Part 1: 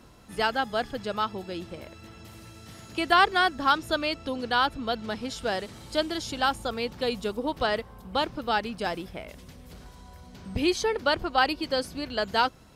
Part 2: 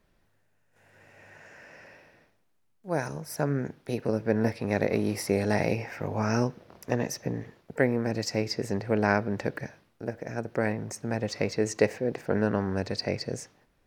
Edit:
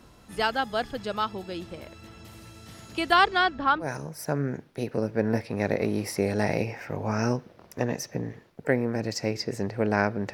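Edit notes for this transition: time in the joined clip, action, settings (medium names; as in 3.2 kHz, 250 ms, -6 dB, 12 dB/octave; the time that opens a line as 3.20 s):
part 1
3.17–3.90 s: low-pass 10 kHz -> 1.3 kHz
3.84 s: go over to part 2 from 2.95 s, crossfade 0.12 s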